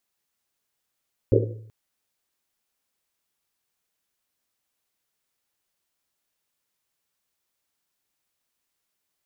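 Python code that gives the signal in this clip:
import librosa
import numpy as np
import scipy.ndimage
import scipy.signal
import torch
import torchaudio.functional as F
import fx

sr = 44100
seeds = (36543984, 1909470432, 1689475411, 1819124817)

y = fx.risset_drum(sr, seeds[0], length_s=0.38, hz=110.0, decay_s=0.83, noise_hz=420.0, noise_width_hz=210.0, noise_pct=55)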